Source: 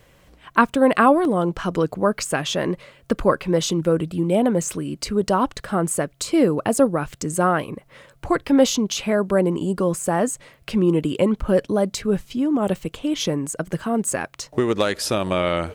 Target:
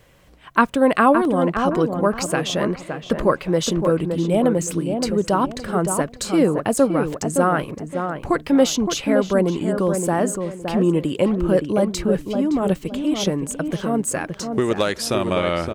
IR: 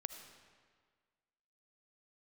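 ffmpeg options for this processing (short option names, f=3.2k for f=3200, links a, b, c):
-filter_complex "[0:a]asplit=2[a][b];[b]adelay=567,lowpass=f=1.5k:p=1,volume=-5.5dB,asplit=2[c][d];[d]adelay=567,lowpass=f=1.5k:p=1,volume=0.3,asplit=2[e][f];[f]adelay=567,lowpass=f=1.5k:p=1,volume=0.3,asplit=2[g][h];[h]adelay=567,lowpass=f=1.5k:p=1,volume=0.3[i];[a][c][e][g][i]amix=inputs=5:normalize=0"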